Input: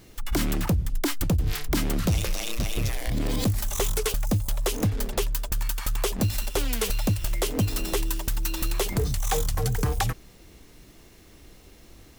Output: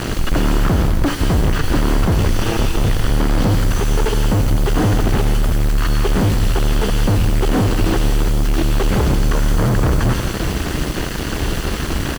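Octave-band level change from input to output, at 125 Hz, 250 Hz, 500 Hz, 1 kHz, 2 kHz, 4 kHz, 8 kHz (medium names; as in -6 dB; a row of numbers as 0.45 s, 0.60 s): +11.0 dB, +11.5 dB, +10.0 dB, +11.0 dB, +10.5 dB, +7.0 dB, +2.5 dB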